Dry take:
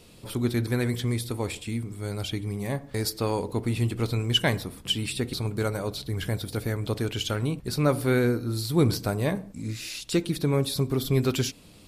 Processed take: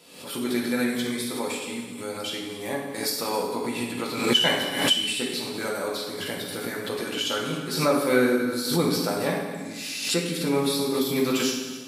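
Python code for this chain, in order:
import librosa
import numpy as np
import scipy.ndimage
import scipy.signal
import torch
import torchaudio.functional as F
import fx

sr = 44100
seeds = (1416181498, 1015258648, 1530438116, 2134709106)

y = scipy.signal.sosfilt(scipy.signal.cheby1(2, 1.0, 370.0, 'highpass', fs=sr, output='sos'), x)
y = fx.peak_eq(y, sr, hz=460.0, db=-4.5, octaves=0.66)
y = y + 10.0 ** (-16.5 / 20.0) * np.pad(y, (int(270 * sr / 1000.0), 0))[:len(y)]
y = fx.rev_fdn(y, sr, rt60_s=1.3, lf_ratio=1.1, hf_ratio=0.85, size_ms=35.0, drr_db=-4.0)
y = fx.pre_swell(y, sr, db_per_s=70.0)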